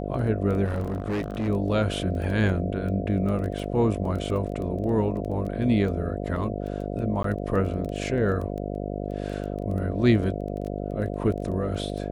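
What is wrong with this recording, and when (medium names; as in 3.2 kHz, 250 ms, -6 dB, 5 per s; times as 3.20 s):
buzz 50 Hz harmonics 14 -31 dBFS
crackle 10 per s -31 dBFS
0.64–1.49 s: clipped -24 dBFS
7.23–7.24 s: dropout 13 ms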